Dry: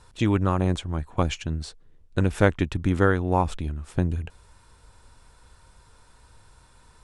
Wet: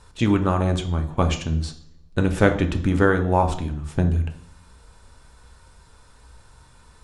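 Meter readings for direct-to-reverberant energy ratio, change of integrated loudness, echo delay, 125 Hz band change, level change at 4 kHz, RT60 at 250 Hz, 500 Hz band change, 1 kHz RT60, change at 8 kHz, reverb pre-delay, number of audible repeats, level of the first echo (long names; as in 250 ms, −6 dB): 5.5 dB, +3.0 dB, no echo audible, +3.0 dB, +3.0 dB, 0.75 s, +3.0 dB, 0.60 s, +3.0 dB, 3 ms, no echo audible, no echo audible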